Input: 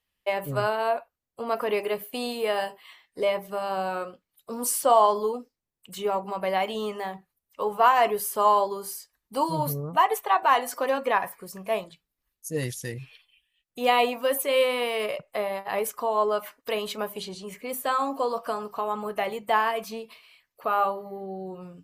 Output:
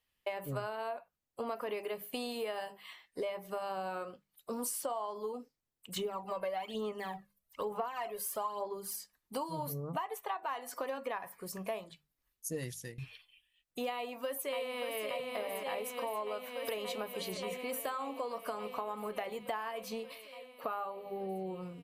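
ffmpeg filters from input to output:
ffmpeg -i in.wav -filter_complex "[0:a]asettb=1/sr,asplit=3[link_01][link_02][link_03];[link_01]atrim=end=5.964[link_04];[link_02]atrim=start=5.96:end=8.96,asetpts=PTS-STARTPTS,afade=type=in:duration=0.004:curve=qsin,afade=type=out:start_time=2.996:duration=0.004:curve=qsin,aphaser=in_gain=1:out_gain=1:delay=1.9:decay=0.61:speed=1.1:type=sinusoidal[link_05];[link_03]atrim=start=8.956[link_06];[link_04][link_05]acrossfade=duration=0.004:curve1=hsin:curve2=qsin[link_07];[link_07][link_06]acrossfade=duration=0.004:curve1=qsin:curve2=hsin,asplit=2[link_08][link_09];[link_09]afade=type=in:start_time=13.94:duration=0.01,afade=type=out:start_time=15.05:duration=0.01,aecho=0:1:580|1160|1740|2320|2900|3480|4060|4640|5220|5800|6380|6960:0.473151|0.354863|0.266148|0.199611|0.149708|0.112281|0.0842108|0.0631581|0.0473686|0.0355264|0.0266448|0.0199836[link_10];[link_08][link_10]amix=inputs=2:normalize=0,asplit=2[link_11][link_12];[link_11]atrim=end=12.98,asetpts=PTS-STARTPTS,afade=type=out:start_time=12.56:duration=0.42:silence=0.1[link_13];[link_12]atrim=start=12.98,asetpts=PTS-STARTPTS,afade=type=in:duration=0.004:curve=hsin:silence=0.1[link_14];[link_13][link_14]concat=n=2:v=0:a=1,bandreject=frequency=50:width_type=h:width=6,bandreject=frequency=100:width_type=h:width=6,bandreject=frequency=150:width_type=h:width=6,bandreject=frequency=200:width_type=h:width=6,acompressor=threshold=-33dB:ratio=10,volume=-1.5dB" out.wav

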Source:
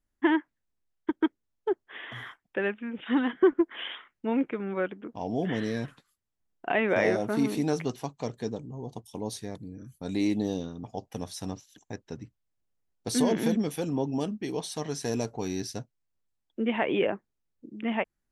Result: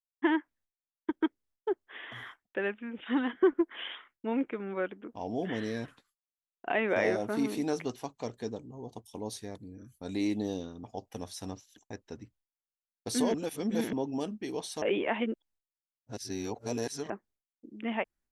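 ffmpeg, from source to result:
ffmpeg -i in.wav -filter_complex "[0:a]asplit=5[link_01][link_02][link_03][link_04][link_05];[link_01]atrim=end=13.342[link_06];[link_02]atrim=start=13.338:end=13.932,asetpts=PTS-STARTPTS,areverse[link_07];[link_03]atrim=start=13.928:end=14.822[link_08];[link_04]atrim=start=14.818:end=17.102,asetpts=PTS-STARTPTS,areverse[link_09];[link_05]atrim=start=17.098[link_10];[link_06][link_07]acrossfade=duration=0.004:curve1=hsin:curve2=hsin[link_11];[link_11][link_08]acrossfade=duration=0.004:curve1=hsin:curve2=hsin[link_12];[link_12][link_09]acrossfade=duration=0.004:curve1=hsin:curve2=hsin[link_13];[link_13][link_10]acrossfade=duration=0.004:curve1=hsin:curve2=hsin,agate=range=-33dB:threshold=-56dB:ratio=3:detection=peak,equalizer=frequency=150:width=2.6:gain=-8.5,volume=-3dB" out.wav

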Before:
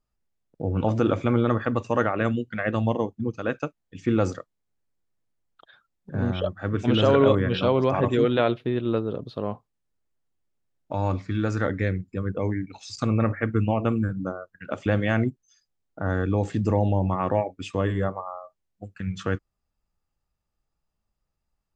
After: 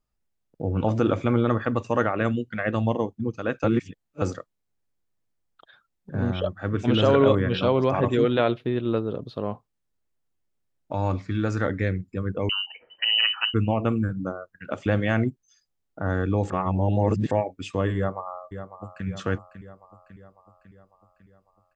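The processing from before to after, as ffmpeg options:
ffmpeg -i in.wav -filter_complex "[0:a]asettb=1/sr,asplit=3[link_01][link_02][link_03];[link_01]atrim=end=12.494[link_04];[link_02]atrim=start=12.49:end=13.54,asetpts=PTS-STARTPTS,afade=type=in:duration=0.004:curve=qsin,afade=type=out:start_time=1.046:duration=0.004:curve=qsin,lowpass=frequency=2600:width_type=q:width=0.5098,lowpass=frequency=2600:width_type=q:width=0.6013,lowpass=frequency=2600:width_type=q:width=0.9,lowpass=frequency=2600:width_type=q:width=2.563,afreqshift=-3100[link_05];[link_03]atrim=start=13.536[link_06];[link_04][link_05]acrossfade=duration=0.004:curve1=hsin:curve2=qsin[link_07];[link_07][link_06]acrossfade=duration=0.004:curve1=qsin:curve2=hsin,asplit=2[link_08][link_09];[link_09]afade=type=in:start_time=17.96:duration=0.01,afade=type=out:start_time=19.06:duration=0.01,aecho=0:1:550|1100|1650|2200|2750|3300|3850:0.298538|0.179123|0.107474|0.0644843|0.0386906|0.0232143|0.0139286[link_10];[link_08][link_10]amix=inputs=2:normalize=0,asplit=5[link_11][link_12][link_13][link_14][link_15];[link_11]atrim=end=3.642[link_16];[link_12]atrim=start=3.638:end=4.222,asetpts=PTS-STARTPTS,areverse[link_17];[link_13]atrim=start=4.218:end=16.502[link_18];[link_14]atrim=start=16.498:end=17.312,asetpts=PTS-STARTPTS,areverse[link_19];[link_15]atrim=start=17.308[link_20];[link_16][link_17]acrossfade=duration=0.004:curve1=hsin:curve2=hsin[link_21];[link_21][link_18]acrossfade=duration=0.004:curve1=hsin:curve2=hsin[link_22];[link_22][link_19]acrossfade=duration=0.004:curve1=hsin:curve2=hsin[link_23];[link_23][link_20]acrossfade=duration=0.004:curve1=hsin:curve2=hsin" out.wav

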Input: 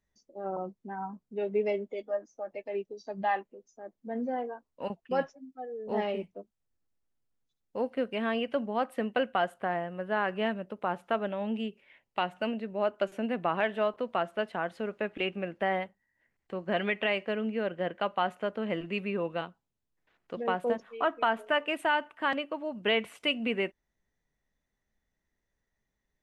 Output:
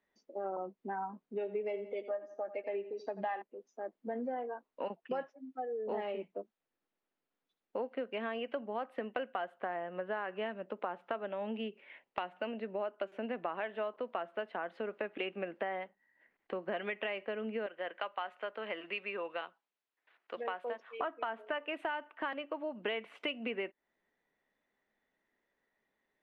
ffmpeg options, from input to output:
ffmpeg -i in.wav -filter_complex "[0:a]asettb=1/sr,asplit=3[link_01][link_02][link_03];[link_01]atrim=end=1.264[link_04];[link_02]atrim=start=1.26:end=3.42,asetpts=PTS-STARTPTS,afade=type=in:duration=0.004:curve=qsin,afade=type=out:start_time=2.156:duration=0.004:curve=qsin,aecho=1:1:85|170|255:0.178|0.0658|0.0243,atrim=end_sample=95256[link_05];[link_03]atrim=start=3.416[link_06];[link_04][link_05]acrossfade=duration=0.004:curve1=hsin:curve2=qsin[link_07];[link_07][link_06]acrossfade=duration=0.004:curve1=qsin:curve2=hsin,asettb=1/sr,asplit=3[link_08][link_09][link_10];[link_08]atrim=end=17.664[link_11];[link_09]atrim=start=17.66:end=21,asetpts=PTS-STARTPTS,afade=type=in:duration=0.004:curve=qsin,afade=type=out:start_time=3.336:duration=0.004:curve=qsin,highpass=frequency=1200:poles=1[link_12];[link_10]atrim=start=20.996[link_13];[link_11][link_12]acrossfade=duration=0.004:curve1=hsin:curve2=qsin[link_14];[link_14][link_13]acrossfade=duration=0.004:curve1=qsin:curve2=hsin,acrossover=split=230 3700:gain=0.0708 1 0.0794[link_15][link_16][link_17];[link_15][link_16][link_17]amix=inputs=3:normalize=0,acompressor=threshold=-41dB:ratio=5,volume=5.5dB" out.wav

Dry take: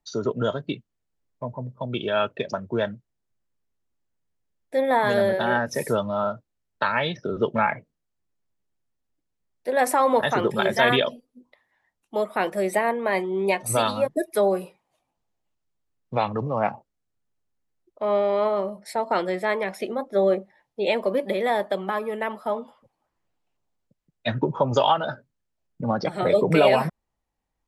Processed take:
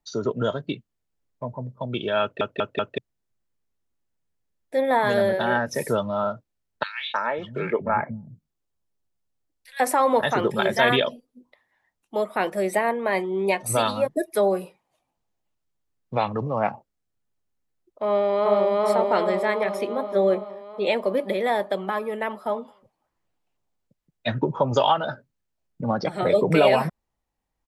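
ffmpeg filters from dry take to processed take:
ffmpeg -i in.wav -filter_complex "[0:a]asettb=1/sr,asplit=3[link_01][link_02][link_03];[link_01]atrim=end=6.834[link_04];[link_02]atrim=start=6.83:end=9.8,asetpts=PTS-STARTPTS,afade=type=in:duration=0.004:curve=qsin,afade=type=out:start_time=2.966:duration=0.004:curve=qsin,acrossover=split=230|1900[link_05][link_06][link_07];[link_06]adelay=310[link_08];[link_05]adelay=550[link_09];[link_09][link_08][link_07]amix=inputs=3:normalize=0,atrim=end_sample=130977[link_10];[link_03]atrim=start=9.796[link_11];[link_04][link_10]acrossfade=duration=0.004:curve1=hsin:curve2=qsin[link_12];[link_12][link_11]acrossfade=duration=0.004:curve1=qsin:curve2=hsin,asplit=2[link_13][link_14];[link_14]afade=type=in:start_time=18.07:duration=0.01,afade=type=out:start_time=18.71:duration=0.01,aecho=0:1:380|760|1140|1520|1900|2280|2660|3040|3420|3800|4180:1|0.65|0.4225|0.274625|0.178506|0.116029|0.0754189|0.0490223|0.0318645|0.0207119|0.0134627[link_15];[link_13][link_15]amix=inputs=2:normalize=0,asplit=5[link_16][link_17][link_18][link_19][link_20];[link_16]atrim=end=2.412[link_21];[link_17]atrim=start=2.218:end=2.412[link_22];[link_18]atrim=start=2.218:end=2.412[link_23];[link_19]atrim=start=2.218:end=2.412[link_24];[link_20]atrim=start=2.978[link_25];[link_21][link_22]acrossfade=duration=0.004:curve1=hsin:curve2=hsin[link_26];[link_26][link_23]acrossfade=duration=0.004:curve1=hsin:curve2=hsin[link_27];[link_27][link_24]acrossfade=duration=0.004:curve1=hsin:curve2=hsin[link_28];[link_28][link_25]acrossfade=duration=0.004:curve1=hsin:curve2=hsin" out.wav

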